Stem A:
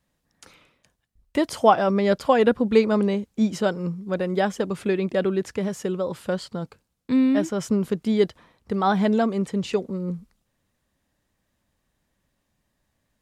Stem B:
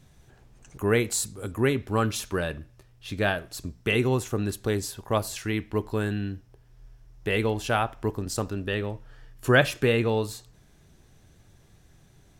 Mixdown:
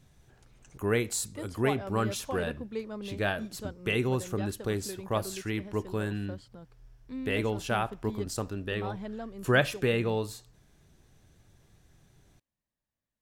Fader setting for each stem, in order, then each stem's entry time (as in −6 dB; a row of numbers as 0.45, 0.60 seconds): −18.5, −4.5 decibels; 0.00, 0.00 seconds